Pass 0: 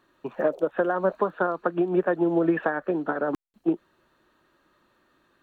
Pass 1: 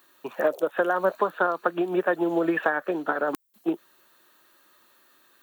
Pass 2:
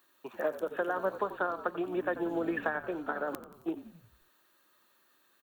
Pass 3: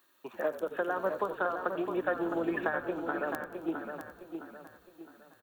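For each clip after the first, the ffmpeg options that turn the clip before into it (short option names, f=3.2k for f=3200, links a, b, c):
-af "aemphasis=mode=production:type=riaa,volume=2.5dB"
-filter_complex "[0:a]asplit=7[a][b][c][d][e][f][g];[b]adelay=89,afreqshift=-53,volume=-13dB[h];[c]adelay=178,afreqshift=-106,volume=-18.2dB[i];[d]adelay=267,afreqshift=-159,volume=-23.4dB[j];[e]adelay=356,afreqshift=-212,volume=-28.6dB[k];[f]adelay=445,afreqshift=-265,volume=-33.8dB[l];[g]adelay=534,afreqshift=-318,volume=-39dB[m];[a][h][i][j][k][l][m]amix=inputs=7:normalize=0,volume=-8.5dB"
-af "aecho=1:1:662|1324|1986|2648:0.447|0.165|0.0612|0.0226"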